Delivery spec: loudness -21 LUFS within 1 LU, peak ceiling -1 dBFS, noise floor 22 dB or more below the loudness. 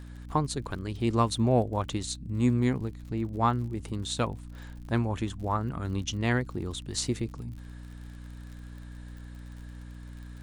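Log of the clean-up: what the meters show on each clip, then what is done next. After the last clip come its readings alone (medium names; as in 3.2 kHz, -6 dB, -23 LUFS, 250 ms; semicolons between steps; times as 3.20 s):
tick rate 52 per s; hum 60 Hz; highest harmonic 300 Hz; hum level -39 dBFS; loudness -30.0 LUFS; peak level -11.5 dBFS; loudness target -21.0 LUFS
-> de-click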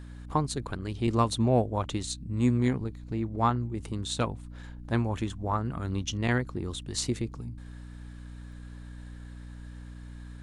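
tick rate 0.096 per s; hum 60 Hz; highest harmonic 300 Hz; hum level -39 dBFS
-> hum notches 60/120/180/240/300 Hz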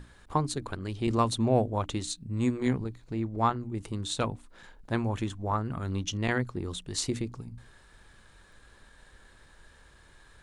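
hum not found; loudness -31.0 LUFS; peak level -12.0 dBFS; loudness target -21.0 LUFS
-> trim +10 dB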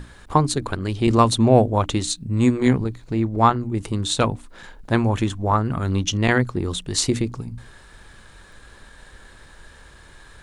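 loudness -21.0 LUFS; peak level -2.0 dBFS; noise floor -47 dBFS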